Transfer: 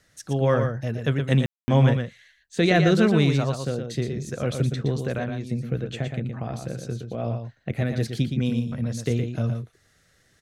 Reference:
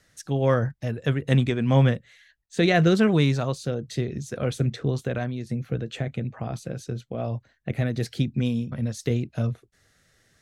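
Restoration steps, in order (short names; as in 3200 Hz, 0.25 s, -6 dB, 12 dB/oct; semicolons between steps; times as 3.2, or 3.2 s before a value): room tone fill 1.46–1.68; inverse comb 0.118 s -6.5 dB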